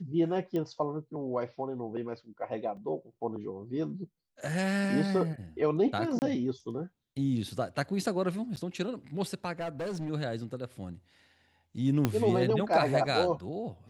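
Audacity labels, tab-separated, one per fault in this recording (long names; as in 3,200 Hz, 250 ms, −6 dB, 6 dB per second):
0.560000	0.560000	click −23 dBFS
2.770000	2.770000	drop-out 2.7 ms
6.190000	6.220000	drop-out 29 ms
8.560000	8.570000	drop-out 9.1 ms
9.600000	10.100000	clipping −31.5 dBFS
12.050000	12.050000	click −12 dBFS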